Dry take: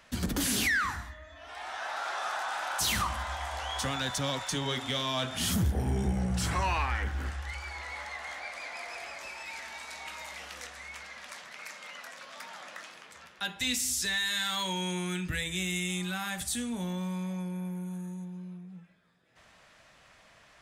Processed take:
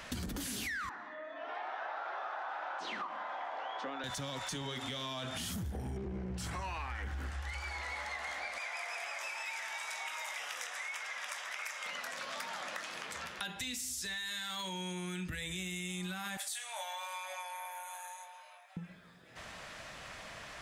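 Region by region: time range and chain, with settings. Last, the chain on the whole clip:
0.89–4.04 HPF 290 Hz 24 dB/oct + tape spacing loss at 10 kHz 41 dB
5.97–6.38 minimum comb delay 0.43 ms + LPF 3400 Hz + bell 370 Hz +12 dB 0.57 oct
8.58–11.86 HPF 680 Hz + notch 4300 Hz, Q 5.3
16.37–18.77 rippled Chebyshev high-pass 570 Hz, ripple 3 dB + doubler 21 ms -6 dB
whole clip: limiter -28.5 dBFS; compressor, threshold -49 dBFS; gain +10.5 dB

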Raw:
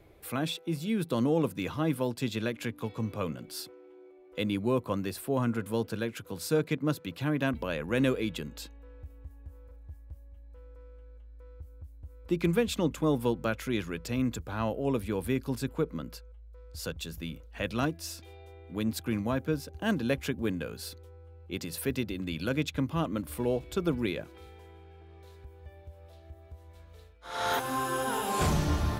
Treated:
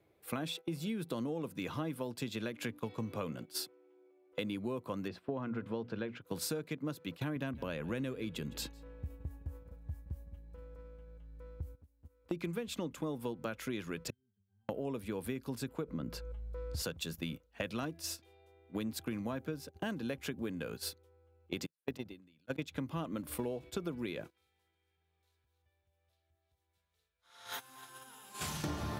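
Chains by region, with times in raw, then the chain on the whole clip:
5.08–6.22 air absorption 230 m + notches 60/120/180/240 Hz
7.36–11.75 low shelf 130 Hz +11 dB + echo 0.159 s -22.5 dB
14.1–14.69 passive tone stack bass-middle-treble 6-0-2 + octave resonator G, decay 0.35 s
15.88–16.82 tilt -2 dB/oct + fast leveller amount 50%
21.66–22.71 gate -28 dBFS, range -46 dB + sustainer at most 61 dB/s
24.3–28.64 regenerating reverse delay 0.225 s, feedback 43%, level -7.5 dB + passive tone stack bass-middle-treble 5-5-5
whole clip: gate -40 dBFS, range -16 dB; HPF 110 Hz; compressor 12:1, threshold -39 dBFS; gain +4.5 dB

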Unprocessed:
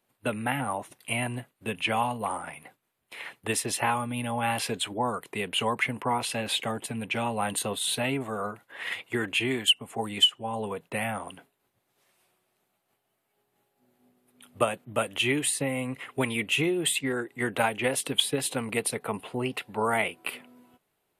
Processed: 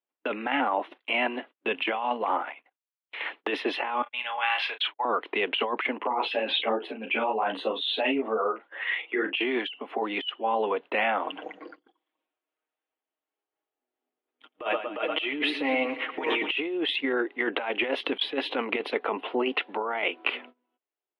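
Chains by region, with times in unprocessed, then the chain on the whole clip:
2.43–3.21 low shelf 440 Hz -9.5 dB + level quantiser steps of 11 dB
4.02–5.05 HPF 1300 Hz + gate -43 dBFS, range -50 dB + doubler 32 ms -8.5 dB
5.98–9.37 formant sharpening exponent 1.5 + doubler 36 ms -8 dB + ensemble effect
11.24–16.51 echoes that change speed 0.177 s, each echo -6 st, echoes 3, each echo -6 dB + comb 6.4 ms, depth 69% + feedback echo 0.116 s, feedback 49%, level -14.5 dB
whole clip: elliptic band-pass 290–3300 Hz, stop band 40 dB; gate -53 dBFS, range -26 dB; negative-ratio compressor -32 dBFS, ratio -1; gain +5 dB

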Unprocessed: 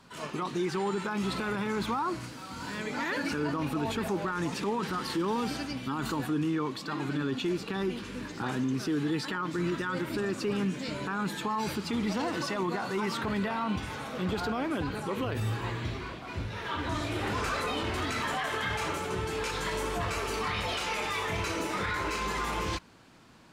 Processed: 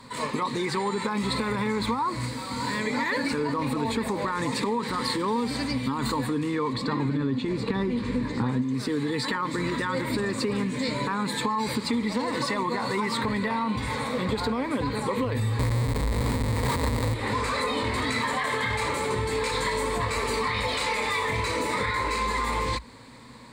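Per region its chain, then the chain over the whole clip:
6.73–8.62 LPF 3900 Hz 6 dB/oct + low shelf 360 Hz +8.5 dB
15.59–17.14 RIAA curve playback + Schmitt trigger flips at -39 dBFS
whole clip: ripple EQ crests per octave 0.98, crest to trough 11 dB; compressor, threshold -31 dBFS; gain +7.5 dB

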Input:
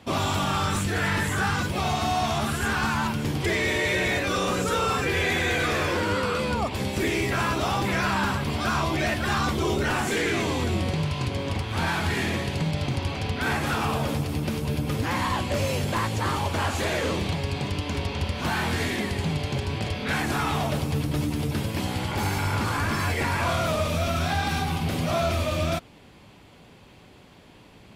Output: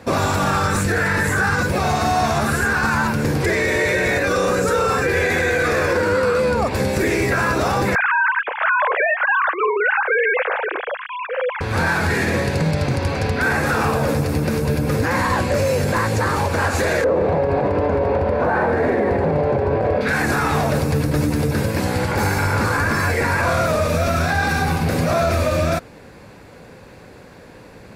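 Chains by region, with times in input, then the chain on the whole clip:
7.95–11.61 sine-wave speech + HPF 650 Hz
17.04–20.01 EQ curve 180 Hz 0 dB, 610 Hz +12 dB, 2100 Hz -4 dB, 6400 Hz -19 dB + echo 0.141 s -10.5 dB
whole clip: thirty-one-band EQ 500 Hz +9 dB, 1600 Hz +7 dB, 3150 Hz -12 dB; limiter -18 dBFS; gain +7.5 dB

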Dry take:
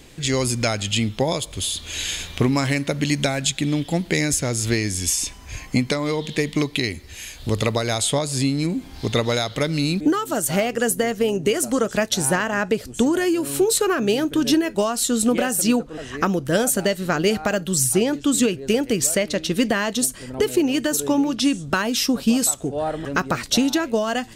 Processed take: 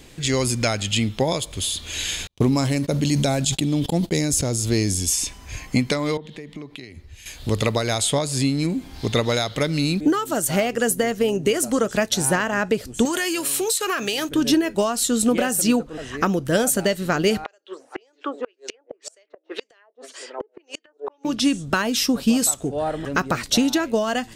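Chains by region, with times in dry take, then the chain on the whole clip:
2.27–5.13 gate -30 dBFS, range -45 dB + bell 1900 Hz -10 dB 1.3 oct + sustainer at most 24 dB/s
6.17–7.26 compressor 12:1, threshold -31 dBFS + high shelf 3500 Hz -11.5 dB + three-band expander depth 100%
13.05–14.29 tilt shelf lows -9.5 dB, about 690 Hz + notch 1500 Hz, Q 17 + compressor, threshold -19 dBFS
17.44–21.25 steep high-pass 370 Hz + LFO low-pass sine 1.9 Hz 640–7700 Hz + flipped gate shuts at -15 dBFS, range -36 dB
whole clip: dry

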